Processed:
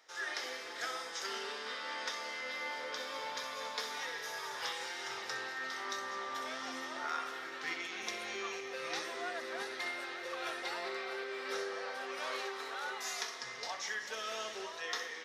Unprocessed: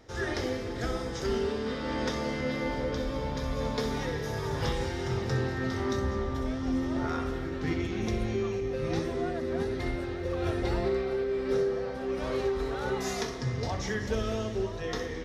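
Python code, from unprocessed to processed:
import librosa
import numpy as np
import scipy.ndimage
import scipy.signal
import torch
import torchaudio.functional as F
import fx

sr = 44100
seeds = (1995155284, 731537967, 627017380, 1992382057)

y = scipy.signal.sosfilt(scipy.signal.butter(2, 1100.0, 'highpass', fs=sr, output='sos'), x)
y = fx.rider(y, sr, range_db=10, speed_s=0.5)
y = y * librosa.db_to_amplitude(1.0)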